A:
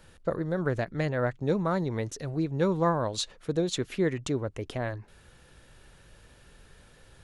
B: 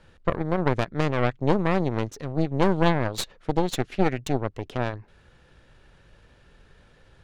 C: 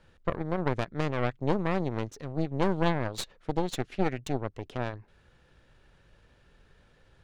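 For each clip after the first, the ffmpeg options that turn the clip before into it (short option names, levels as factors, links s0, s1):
-af "adynamicsmooth=sensitivity=6.5:basefreq=5300,aeval=exprs='0.211*(cos(1*acos(clip(val(0)/0.211,-1,1)))-cos(1*PI/2))+0.0188*(cos(3*acos(clip(val(0)/0.211,-1,1)))-cos(3*PI/2))+0.075*(cos(4*acos(clip(val(0)/0.211,-1,1)))-cos(4*PI/2))':c=same,volume=1.41"
-af "equalizer=f=12000:w=7.1:g=-5.5,volume=0.531"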